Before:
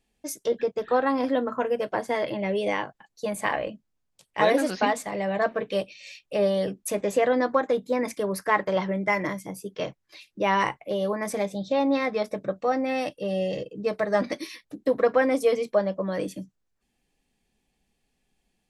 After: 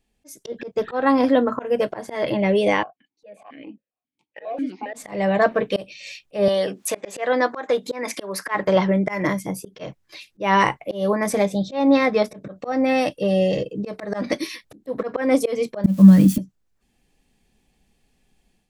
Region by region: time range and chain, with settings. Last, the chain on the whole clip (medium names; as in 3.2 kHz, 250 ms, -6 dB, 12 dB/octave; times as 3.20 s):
2.83–4.94 s: dynamic bell 540 Hz, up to +3 dB, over -34 dBFS, Q 0.75 + compression 2:1, threshold -26 dBFS + stepped vowel filter 7.4 Hz
6.48–8.55 s: frequency weighting A + upward compressor, threshold -29 dBFS
15.84–16.38 s: zero-crossing glitches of -30 dBFS + resonant low shelf 310 Hz +12 dB, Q 3
whole clip: bass shelf 230 Hz +4 dB; slow attack 179 ms; level rider gain up to 7 dB